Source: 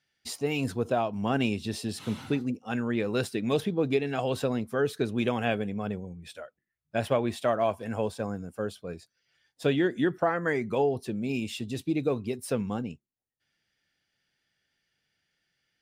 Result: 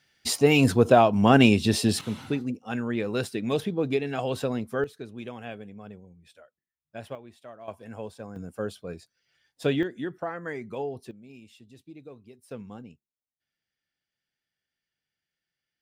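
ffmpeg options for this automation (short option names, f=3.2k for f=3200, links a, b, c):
-af "asetnsamples=n=441:p=0,asendcmd='2.01 volume volume 0dB;4.84 volume volume -11dB;7.15 volume volume -19dB;7.68 volume volume -8dB;8.36 volume volume 0.5dB;9.83 volume volume -7dB;11.11 volume volume -18dB;12.51 volume volume -10.5dB',volume=10dB"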